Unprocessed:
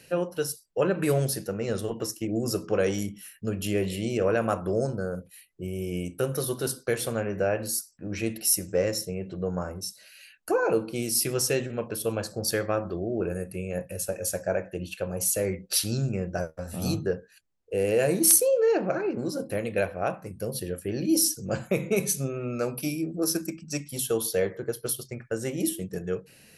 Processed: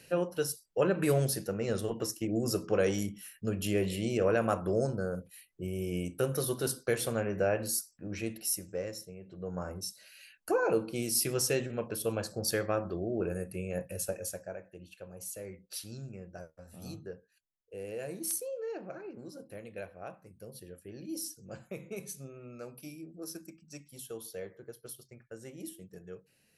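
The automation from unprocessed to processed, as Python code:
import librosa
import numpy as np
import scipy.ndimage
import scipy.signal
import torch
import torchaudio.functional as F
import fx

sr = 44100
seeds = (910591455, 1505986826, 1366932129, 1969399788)

y = fx.gain(x, sr, db=fx.line((7.8, -3.0), (9.21, -15.0), (9.71, -4.0), (14.09, -4.0), (14.57, -16.0)))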